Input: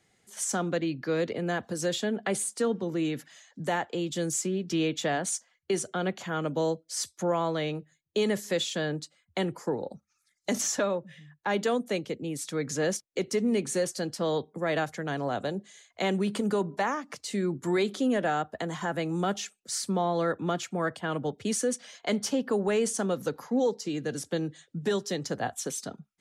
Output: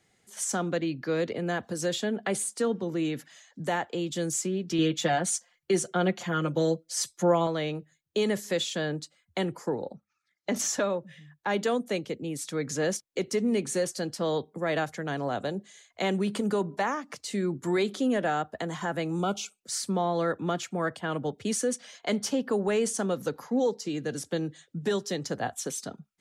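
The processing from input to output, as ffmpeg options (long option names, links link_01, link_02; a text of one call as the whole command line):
ffmpeg -i in.wav -filter_complex "[0:a]asettb=1/sr,asplit=3[link_01][link_02][link_03];[link_01]atrim=end=4.784[link_04];[link_02]atrim=start=4.78:end=7.47,asetpts=PTS-STARTPTS,afade=type=in:duration=0.004:curve=qsin,afade=type=out:start_time=2.686:duration=0.004:curve=qsin,aecho=1:1:5.7:0.77,atrim=end_sample=118629[link_05];[link_03]atrim=start=7.466[link_06];[link_04][link_05]acrossfade=duration=0.004:curve1=hsin:curve2=qsin[link_07];[link_07][link_06]acrossfade=duration=0.004:curve1=qsin:curve2=hsin,asettb=1/sr,asplit=3[link_08][link_09][link_10];[link_08]atrim=end=9.914[link_11];[link_09]atrim=start=9.91:end=10.56,asetpts=PTS-STARTPTS,afade=type=in:duration=0.004:curve=qsin,afade=type=out:start_time=0.646:duration=0.004:curve=qsin,highpass=110,lowpass=3200[link_12];[link_10]atrim=start=10.556[link_13];[link_11][link_12]acrossfade=duration=0.004:curve1=hsin:curve2=qsin[link_14];[link_14][link_13]acrossfade=duration=0.004:curve1=qsin:curve2=hsin,asettb=1/sr,asplit=3[link_15][link_16][link_17];[link_15]atrim=end=19.194[link_18];[link_16]atrim=start=19.19:end=19.6,asetpts=PTS-STARTPTS,afade=type=in:duration=0.004:curve=qsin,afade=type=out:start_time=0.406:duration=0.004:curve=qsin,asuperstop=centerf=1800:order=20:qfactor=2.9[link_19];[link_17]atrim=start=19.596[link_20];[link_18][link_19]acrossfade=duration=0.004:curve1=hsin:curve2=qsin[link_21];[link_21][link_20]acrossfade=duration=0.004:curve1=qsin:curve2=hsin" out.wav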